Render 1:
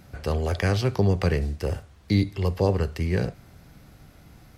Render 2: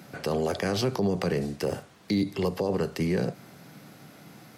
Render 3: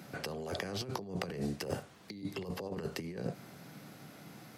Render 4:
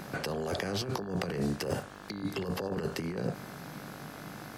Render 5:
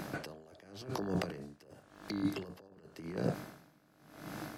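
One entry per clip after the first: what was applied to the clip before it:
high-pass 150 Hz 24 dB/octave; dynamic bell 2.2 kHz, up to -5 dB, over -44 dBFS, Q 0.84; peak limiter -22.5 dBFS, peak gain reduction 11 dB; trim +5 dB
compressor with a negative ratio -30 dBFS, ratio -0.5; trim -7 dB
in parallel at +1 dB: peak limiter -31.5 dBFS, peak gain reduction 11 dB; on the sum: mains buzz 50 Hz, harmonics 35, -50 dBFS 0 dB/octave; short-mantissa float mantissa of 6-bit
small resonant body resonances 310/630 Hz, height 8 dB, ringing for 90 ms; logarithmic tremolo 0.91 Hz, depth 26 dB

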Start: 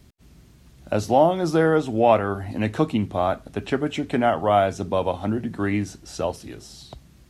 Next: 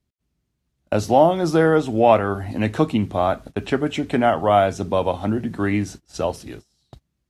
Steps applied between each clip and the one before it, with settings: gate -38 dBFS, range -26 dB; trim +2.5 dB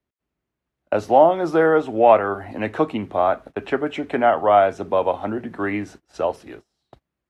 three-band isolator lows -13 dB, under 320 Hz, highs -14 dB, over 2.6 kHz; trim +2 dB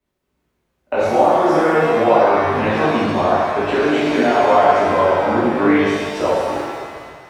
compression 2.5:1, threshold -25 dBFS, peak gain reduction 11.5 dB; pitch-shifted reverb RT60 1.7 s, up +7 st, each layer -8 dB, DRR -11 dB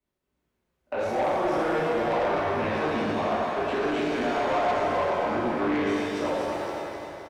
saturation -13 dBFS, distortion -12 dB; feedback delay 259 ms, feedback 59%, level -7.5 dB; trim -8.5 dB

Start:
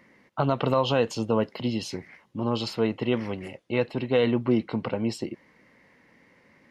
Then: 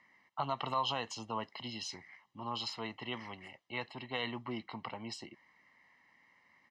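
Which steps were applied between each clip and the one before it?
three-band isolator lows -13 dB, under 490 Hz, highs -17 dB, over 7.9 kHz; comb 1 ms, depth 64%; dynamic bell 7 kHz, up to +4 dB, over -46 dBFS, Q 0.84; trim -8.5 dB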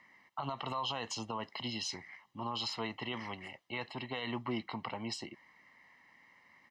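peak limiter -31 dBFS, peak gain reduction 11.5 dB; trim +4 dB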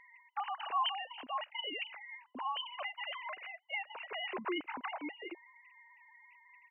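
formants replaced by sine waves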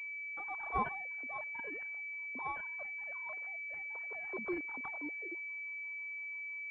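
Chebyshev shaper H 3 -14 dB, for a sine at -24 dBFS; rotary cabinet horn 1.1 Hz, later 6 Hz, at 3.68 s; class-D stage that switches slowly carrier 2.3 kHz; trim +5.5 dB

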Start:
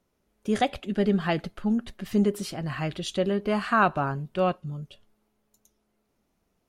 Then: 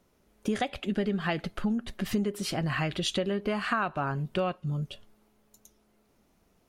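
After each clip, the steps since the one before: dynamic bell 2.3 kHz, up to +4 dB, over -42 dBFS, Q 0.85; compression 6:1, threshold -33 dBFS, peak gain reduction 17.5 dB; trim +6.5 dB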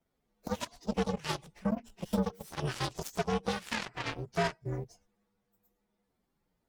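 frequency axis rescaled in octaves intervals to 125%; Chebyshev shaper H 7 -14 dB, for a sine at -18 dBFS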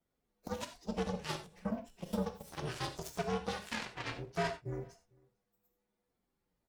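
echo from a far wall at 77 m, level -28 dB; gated-style reverb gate 110 ms flat, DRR 6.5 dB; trim -5 dB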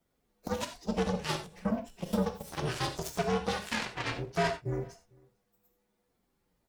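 saturation -24 dBFS, distortion -21 dB; trim +7 dB

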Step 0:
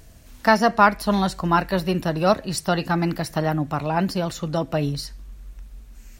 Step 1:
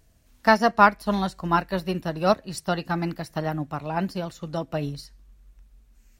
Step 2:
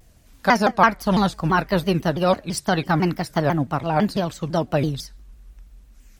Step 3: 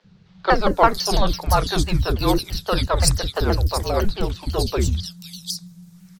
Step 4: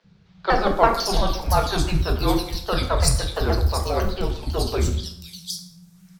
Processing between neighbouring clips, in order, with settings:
upward expansion 1.5:1, over -37 dBFS
in parallel at -0.5 dB: compressor with a negative ratio -24 dBFS, ratio -0.5; on the sum: vibrato with a chosen wave saw down 6 Hz, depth 250 cents
frequency shift -220 Hz; resonant high shelf 3.2 kHz +7 dB, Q 1.5; three bands offset in time mids, lows, highs 40/500 ms, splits 380/3500 Hz; trim +2 dB
plate-style reverb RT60 0.73 s, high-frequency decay 0.7×, DRR 3 dB; trim -3 dB

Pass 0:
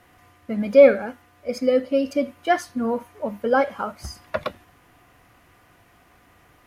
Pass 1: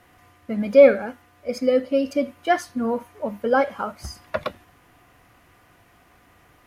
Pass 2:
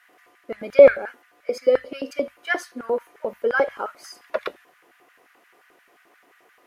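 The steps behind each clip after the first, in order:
no audible change
LFO high-pass square 5.7 Hz 400–1600 Hz; hum notches 50/100 Hz; trim -3 dB

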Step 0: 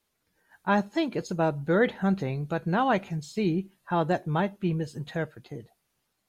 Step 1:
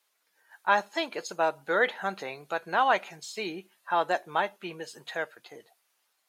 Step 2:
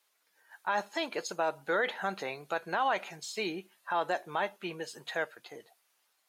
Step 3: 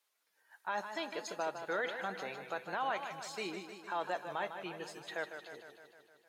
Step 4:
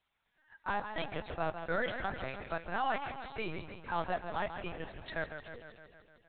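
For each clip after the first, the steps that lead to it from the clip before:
high-pass 710 Hz 12 dB/octave; trim +4 dB
peak limiter -20 dBFS, peak gain reduction 10.5 dB
modulated delay 154 ms, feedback 65%, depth 80 cents, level -9 dB; trim -6.5 dB
octave divider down 1 oct, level -3 dB; LPC vocoder at 8 kHz pitch kept; trim +2.5 dB

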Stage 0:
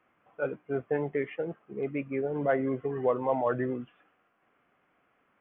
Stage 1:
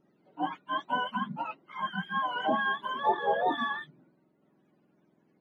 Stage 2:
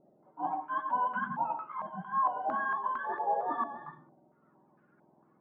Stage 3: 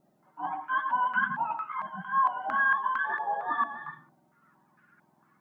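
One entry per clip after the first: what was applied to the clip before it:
spectrum inverted on a logarithmic axis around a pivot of 660 Hz; trim +2 dB
reverse; compression, threshold -37 dBFS, peak gain reduction 15 dB; reverse; reverberation RT60 0.35 s, pre-delay 82 ms, DRR 7 dB; step-sequenced low-pass 4.4 Hz 670–1500 Hz
FFT filter 200 Hz 0 dB, 490 Hz -9 dB, 1.7 kHz +12 dB

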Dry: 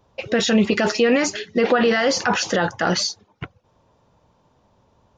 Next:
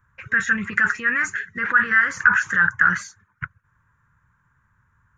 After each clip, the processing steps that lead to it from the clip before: FFT filter 140 Hz 0 dB, 250 Hz -15 dB, 730 Hz -27 dB, 1 kHz -4 dB, 1.6 kHz +14 dB, 2.9 kHz -14 dB, 4.8 kHz -23 dB, 7.2 kHz -3 dB; trim -1 dB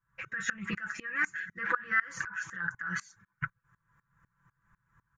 comb 6 ms, depth 80%; compression 5:1, threshold -21 dBFS, peak gain reduction 13 dB; sawtooth tremolo in dB swelling 4 Hz, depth 23 dB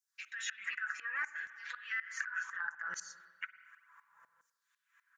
LFO high-pass saw down 0.68 Hz 520–6000 Hz; spring tank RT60 1.2 s, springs 45/53 ms, chirp 50 ms, DRR 15.5 dB; compression 2.5:1, threshold -45 dBFS, peak gain reduction 15 dB; trim +4 dB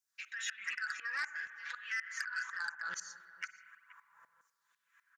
delay 477 ms -19 dB; transformer saturation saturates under 3.9 kHz; trim +1 dB

